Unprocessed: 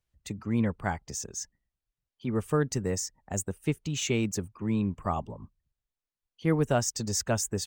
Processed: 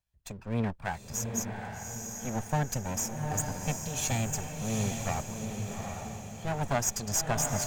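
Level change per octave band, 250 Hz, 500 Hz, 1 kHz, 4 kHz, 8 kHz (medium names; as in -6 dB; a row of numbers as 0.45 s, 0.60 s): -5.0 dB, -4.5 dB, +1.5 dB, -2.5 dB, +2.5 dB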